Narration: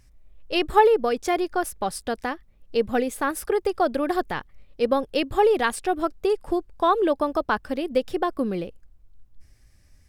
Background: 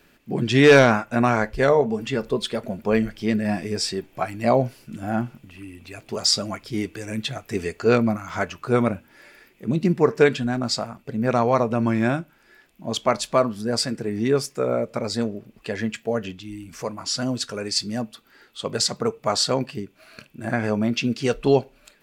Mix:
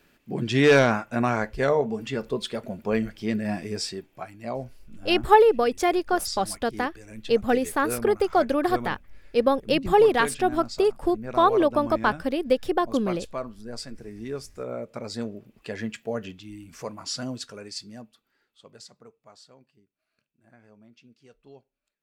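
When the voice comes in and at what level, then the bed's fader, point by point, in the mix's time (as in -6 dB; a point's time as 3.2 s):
4.55 s, +1.0 dB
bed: 3.78 s -4.5 dB
4.37 s -13.5 dB
14.26 s -13.5 dB
15.46 s -5.5 dB
17.11 s -5.5 dB
19.54 s -32 dB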